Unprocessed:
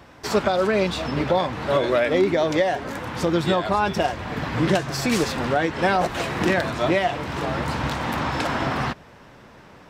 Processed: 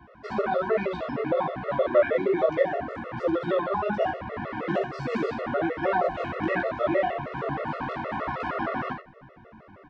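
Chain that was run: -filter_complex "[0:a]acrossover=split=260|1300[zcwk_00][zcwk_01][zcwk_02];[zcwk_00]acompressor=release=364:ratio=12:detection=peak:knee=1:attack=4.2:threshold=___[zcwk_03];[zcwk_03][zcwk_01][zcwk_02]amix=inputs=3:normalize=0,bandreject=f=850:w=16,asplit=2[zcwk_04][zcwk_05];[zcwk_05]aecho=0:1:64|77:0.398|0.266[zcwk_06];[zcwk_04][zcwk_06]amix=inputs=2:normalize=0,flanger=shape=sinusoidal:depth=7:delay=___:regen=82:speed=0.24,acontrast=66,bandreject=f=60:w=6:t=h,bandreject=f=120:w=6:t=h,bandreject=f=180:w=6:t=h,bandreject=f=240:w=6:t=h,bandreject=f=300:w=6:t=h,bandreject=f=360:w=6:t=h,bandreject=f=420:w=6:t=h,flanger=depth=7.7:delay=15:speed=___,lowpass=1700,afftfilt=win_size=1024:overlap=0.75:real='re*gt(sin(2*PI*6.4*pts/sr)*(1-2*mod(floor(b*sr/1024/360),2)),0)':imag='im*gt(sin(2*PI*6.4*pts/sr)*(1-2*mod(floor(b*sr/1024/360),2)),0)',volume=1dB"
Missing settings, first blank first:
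-35dB, 4.6, 1.2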